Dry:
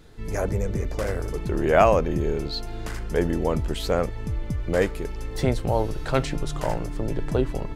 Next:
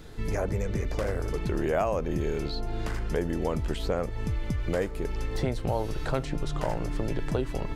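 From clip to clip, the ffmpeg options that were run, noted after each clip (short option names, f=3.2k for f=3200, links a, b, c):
-filter_complex "[0:a]acrossover=split=1300|5200[a][b][c];[a]acompressor=threshold=-31dB:ratio=4[d];[b]acompressor=threshold=-48dB:ratio=4[e];[c]acompressor=threshold=-59dB:ratio=4[f];[d][e][f]amix=inputs=3:normalize=0,volume=4.5dB"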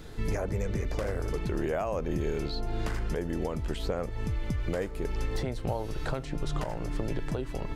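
-af "alimiter=limit=-21.5dB:level=0:latency=1:release=470,volume=1dB"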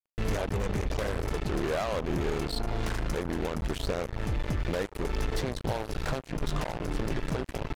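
-af "acrusher=bits=4:mix=0:aa=0.5"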